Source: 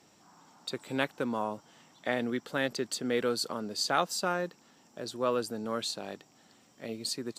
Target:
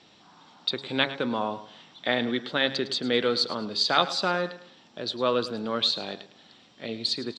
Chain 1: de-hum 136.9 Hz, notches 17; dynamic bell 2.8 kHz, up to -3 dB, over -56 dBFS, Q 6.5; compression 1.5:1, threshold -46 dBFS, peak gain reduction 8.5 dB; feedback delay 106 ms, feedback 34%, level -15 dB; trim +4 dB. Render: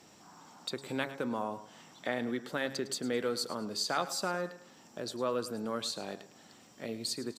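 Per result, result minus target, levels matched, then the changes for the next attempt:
compression: peak gain reduction +8.5 dB; 4 kHz band -3.5 dB
remove: compression 1.5:1, threshold -46 dBFS, peak gain reduction 8.5 dB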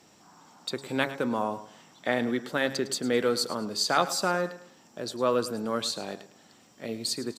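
4 kHz band -4.5 dB
add after dynamic bell: resonant low-pass 3.7 kHz, resonance Q 3.5

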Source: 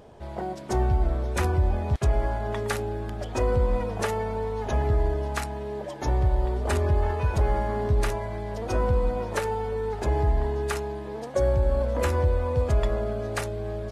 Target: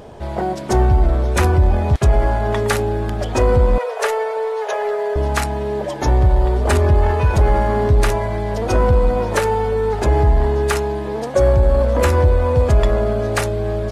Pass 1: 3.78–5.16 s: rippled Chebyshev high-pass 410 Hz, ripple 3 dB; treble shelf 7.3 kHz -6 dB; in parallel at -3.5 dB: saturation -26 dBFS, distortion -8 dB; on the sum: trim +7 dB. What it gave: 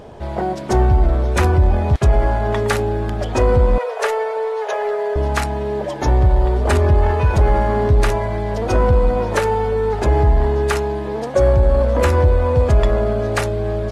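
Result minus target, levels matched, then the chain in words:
8 kHz band -3.0 dB
3.78–5.16 s: rippled Chebyshev high-pass 410 Hz, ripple 3 dB; in parallel at -3.5 dB: saturation -26 dBFS, distortion -8 dB; on the sum: trim +7 dB

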